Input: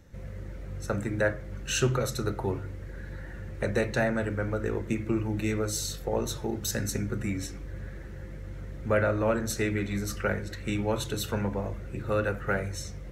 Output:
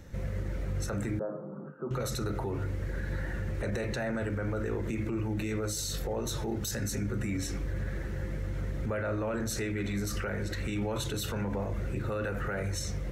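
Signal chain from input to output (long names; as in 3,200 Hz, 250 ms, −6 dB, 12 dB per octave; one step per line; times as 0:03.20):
brickwall limiter −31 dBFS, peak gain reduction 17.5 dB
0:01.19–0:01.91: Chebyshev band-pass filter 150–1,300 Hz, order 5
level +6 dB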